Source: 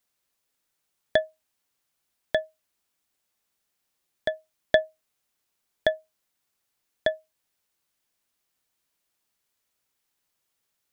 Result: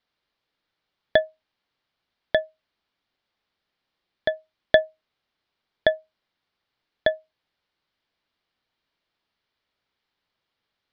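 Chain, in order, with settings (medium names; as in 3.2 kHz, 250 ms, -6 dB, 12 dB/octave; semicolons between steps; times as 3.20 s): steep low-pass 4.6 kHz 36 dB/octave; band-stop 2.6 kHz, Q 23; trim +3.5 dB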